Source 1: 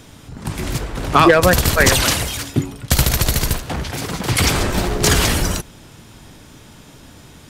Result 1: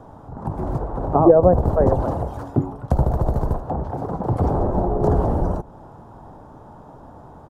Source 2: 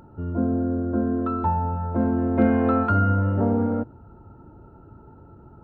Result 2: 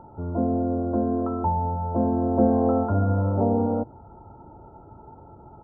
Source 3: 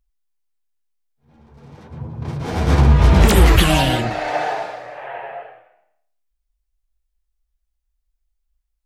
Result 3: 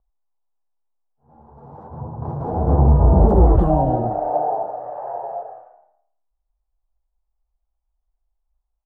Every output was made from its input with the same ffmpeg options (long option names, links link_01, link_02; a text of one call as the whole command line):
ffmpeg -i in.wav -filter_complex "[0:a]firequalizer=gain_entry='entry(270,0);entry(810,12);entry(2200,-23)':delay=0.05:min_phase=1,acrossover=split=650[link_01][link_02];[link_02]acompressor=threshold=-34dB:ratio=6[link_03];[link_01][link_03]amix=inputs=2:normalize=0,volume=-1.5dB" out.wav